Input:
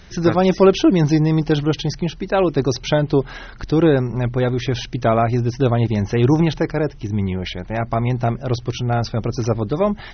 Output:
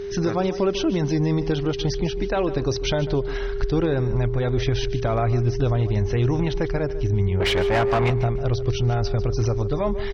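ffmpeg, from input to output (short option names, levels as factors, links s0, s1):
-filter_complex "[0:a]asubboost=boost=6:cutoff=81,alimiter=limit=0.2:level=0:latency=1:release=204,aeval=exprs='val(0)+0.0398*sin(2*PI*400*n/s)':c=same,asettb=1/sr,asplit=3[s0][s1][s2];[s0]atrim=end=7.404[s3];[s1]atrim=start=7.4:end=8.1,asetpts=PTS-STARTPTS,afade=t=in:d=0.004:c=qsin,afade=t=out:st=0.696:d=0.004:c=qsin,asplit=2[s4][s5];[s5]highpass=f=720:p=1,volume=14.1,asoftclip=type=tanh:threshold=0.251[s6];[s4][s6]amix=inputs=2:normalize=0,lowpass=f=3000:p=1,volume=0.501[s7];[s2]atrim=start=8.096[s8];[s3][s7]acrossfade=d=0.004:c1=hsin:c2=qsin[s9];[s9][s8]acrossfade=d=0.004:c1=qsin:c2=hsin,asplit=2[s10][s11];[s11]aecho=0:1:148|296|444:0.178|0.0445|0.0111[s12];[s10][s12]amix=inputs=2:normalize=0"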